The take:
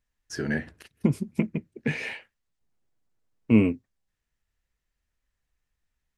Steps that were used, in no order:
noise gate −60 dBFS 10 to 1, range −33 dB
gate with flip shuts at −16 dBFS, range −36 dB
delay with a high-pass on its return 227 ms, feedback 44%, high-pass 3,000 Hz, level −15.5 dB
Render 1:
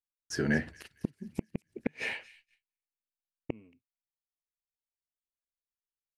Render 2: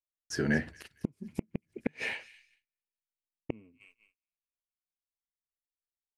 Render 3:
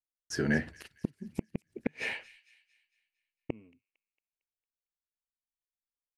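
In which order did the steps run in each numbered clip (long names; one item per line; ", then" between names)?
gate with flip, then delay with a high-pass on its return, then noise gate
delay with a high-pass on its return, then gate with flip, then noise gate
gate with flip, then noise gate, then delay with a high-pass on its return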